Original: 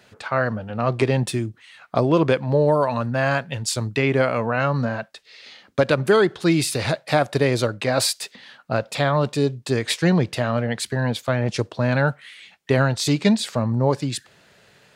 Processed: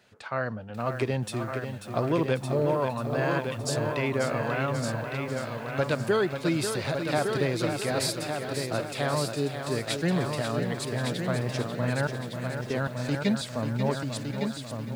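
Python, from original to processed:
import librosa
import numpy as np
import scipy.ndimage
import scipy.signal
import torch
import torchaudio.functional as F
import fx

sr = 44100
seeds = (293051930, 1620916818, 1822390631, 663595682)

y = fx.level_steps(x, sr, step_db=19, at=(12.07, 13.21))
y = fx.echo_feedback(y, sr, ms=1160, feedback_pct=26, wet_db=-6)
y = fx.echo_crushed(y, sr, ms=540, feedback_pct=55, bits=7, wet_db=-7.5)
y = F.gain(torch.from_numpy(y), -8.5).numpy()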